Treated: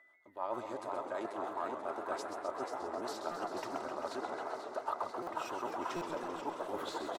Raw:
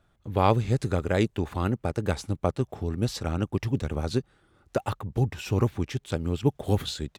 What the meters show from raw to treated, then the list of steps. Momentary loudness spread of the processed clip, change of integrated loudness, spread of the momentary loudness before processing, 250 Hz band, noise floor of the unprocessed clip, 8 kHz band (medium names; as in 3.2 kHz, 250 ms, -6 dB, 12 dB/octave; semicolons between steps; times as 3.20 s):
2 LU, -11.5 dB, 6 LU, -15.5 dB, -67 dBFS, -10.5 dB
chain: recorder AGC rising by 16 dB/s; rotary cabinet horn 6.7 Hz, later 1.2 Hz, at 3.12 s; comb 3.2 ms, depth 65%; in parallel at -7.5 dB: one-sided clip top -28.5 dBFS; on the sum: whistle 2 kHz -51 dBFS; high-pass 570 Hz 12 dB/octave; resonant high shelf 1.6 kHz -7.5 dB, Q 1.5; frequency-shifting echo 488 ms, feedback 58%, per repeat +52 Hz, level -8.5 dB; reverse; compression 12:1, threshold -39 dBFS, peak gain reduction 21.5 dB; reverse; dynamic bell 950 Hz, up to +8 dB, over -57 dBFS, Q 0.94; buffer glitch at 3.31/5.22/5.96 s, samples 256, times 8; modulated delay 131 ms, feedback 80%, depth 158 cents, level -8 dB; trim -1.5 dB